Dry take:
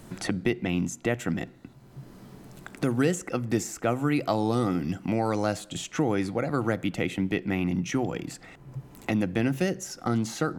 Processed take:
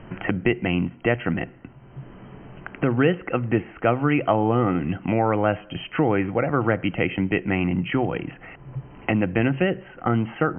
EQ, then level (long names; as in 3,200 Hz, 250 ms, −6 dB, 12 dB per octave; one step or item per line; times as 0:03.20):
linear-phase brick-wall low-pass 3,200 Hz
parametric band 230 Hz −4 dB 1.4 octaves
+7.0 dB